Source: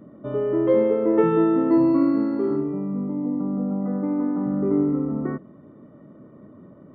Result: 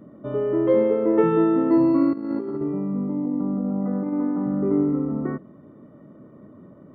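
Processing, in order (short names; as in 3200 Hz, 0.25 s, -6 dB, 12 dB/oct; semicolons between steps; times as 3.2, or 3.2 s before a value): 2.13–4.13 negative-ratio compressor -25 dBFS, ratio -0.5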